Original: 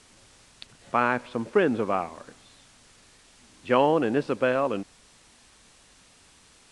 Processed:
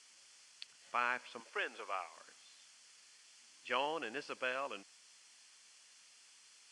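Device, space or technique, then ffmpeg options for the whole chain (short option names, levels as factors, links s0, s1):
piezo pickup straight into a mixer: -filter_complex "[0:a]lowpass=5100,aderivative,bandreject=f=3800:w=5.4,asettb=1/sr,asplit=3[s0][s1][s2];[s0]atrim=end=1.404[s3];[s1]atrim=start=1.4:end=2.17,asetpts=PTS-STARTPTS,afade=t=in:d=0.004:c=qsin,afade=t=out:st=0.766:d=0.004:c=qsin,highpass=470[s4];[s2]atrim=start=2.166[s5];[s3][s4]acrossfade=d=0.004:c1=hsin:c2=qsin[s6];[s6][s5]acrossfade=d=0.004:c1=qsin:c2=hsin,volume=1.58"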